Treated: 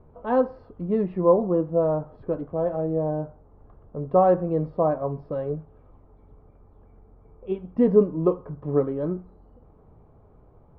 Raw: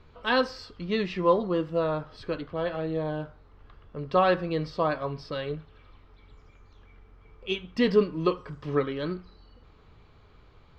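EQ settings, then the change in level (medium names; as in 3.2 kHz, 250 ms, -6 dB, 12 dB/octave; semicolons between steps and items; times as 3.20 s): resonant low-pass 730 Hz, resonance Q 1.8; peaking EQ 180 Hz +4.5 dB 1.8 oct; 0.0 dB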